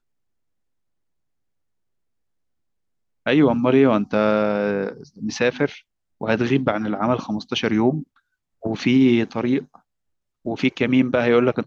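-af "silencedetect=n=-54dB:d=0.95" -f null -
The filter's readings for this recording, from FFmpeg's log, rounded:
silence_start: 0.00
silence_end: 3.26 | silence_duration: 3.26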